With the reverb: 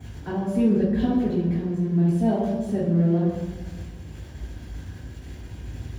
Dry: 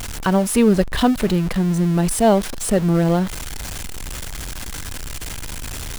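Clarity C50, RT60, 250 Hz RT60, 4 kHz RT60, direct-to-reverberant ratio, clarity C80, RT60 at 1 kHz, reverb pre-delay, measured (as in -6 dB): 0.5 dB, 1.3 s, 1.6 s, 0.80 s, -9.5 dB, 3.5 dB, 1.1 s, 3 ms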